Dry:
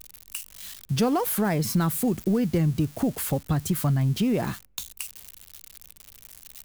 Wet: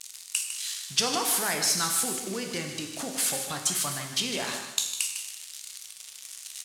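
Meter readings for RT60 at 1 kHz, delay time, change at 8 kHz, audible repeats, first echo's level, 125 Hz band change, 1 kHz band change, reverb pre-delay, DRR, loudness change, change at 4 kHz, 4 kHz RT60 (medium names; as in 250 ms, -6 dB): 1.0 s, 153 ms, +9.5 dB, 1, -9.5 dB, -18.0 dB, -1.5 dB, 7 ms, 2.0 dB, -1.5 dB, +9.5 dB, 0.95 s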